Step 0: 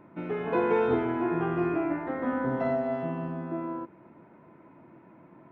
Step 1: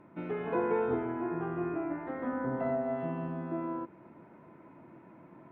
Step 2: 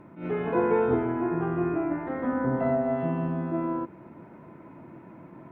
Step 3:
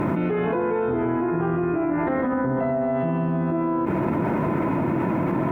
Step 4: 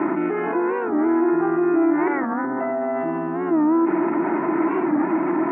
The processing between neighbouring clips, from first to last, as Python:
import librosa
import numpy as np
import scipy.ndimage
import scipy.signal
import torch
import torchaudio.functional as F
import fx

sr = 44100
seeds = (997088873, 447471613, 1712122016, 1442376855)

y1 = fx.env_lowpass_down(x, sr, base_hz=2000.0, full_db=-25.0)
y1 = fx.rider(y1, sr, range_db=10, speed_s=2.0)
y1 = y1 * librosa.db_to_amplitude(-5.5)
y2 = fx.low_shelf(y1, sr, hz=200.0, db=5.5)
y2 = fx.attack_slew(y2, sr, db_per_s=140.0)
y2 = y2 * librosa.db_to_amplitude(5.5)
y3 = fx.env_flatten(y2, sr, amount_pct=100)
y3 = y3 * librosa.db_to_amplitude(-2.5)
y4 = fx.cabinet(y3, sr, low_hz=230.0, low_slope=24, high_hz=2400.0, hz=(230.0, 330.0, 510.0, 800.0, 1300.0, 1900.0), db=(-4, 9, -10, 5, 4, 5))
y4 = fx.record_warp(y4, sr, rpm=45.0, depth_cents=160.0)